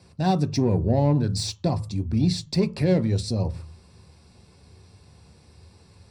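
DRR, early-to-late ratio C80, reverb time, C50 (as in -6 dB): 9.5 dB, 25.0 dB, 0.40 s, 20.0 dB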